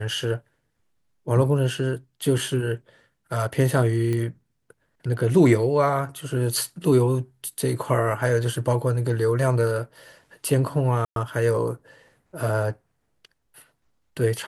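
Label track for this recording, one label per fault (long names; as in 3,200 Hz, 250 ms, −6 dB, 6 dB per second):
4.130000	4.130000	click −16 dBFS
11.050000	11.160000	drop-out 112 ms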